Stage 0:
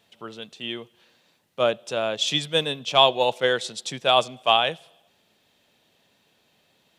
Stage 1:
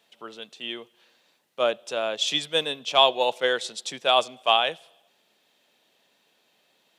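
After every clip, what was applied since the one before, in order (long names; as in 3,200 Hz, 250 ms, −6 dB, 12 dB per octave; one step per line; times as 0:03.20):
Bessel high-pass filter 310 Hz, order 2
level −1 dB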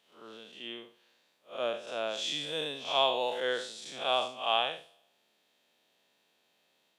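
spectrum smeared in time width 145 ms
level −4.5 dB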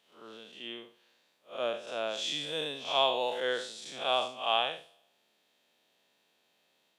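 no processing that can be heard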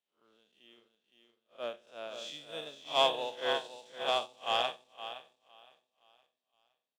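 repeating echo 515 ms, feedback 44%, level −5.5 dB
leveller curve on the samples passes 1
expander for the loud parts 2.5 to 1, over −35 dBFS
level −1.5 dB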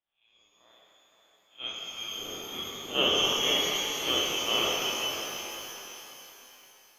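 low-pass that shuts in the quiet parts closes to 2,900 Hz
voice inversion scrambler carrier 3,800 Hz
reverb with rising layers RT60 3.4 s, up +12 semitones, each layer −8 dB, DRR −4 dB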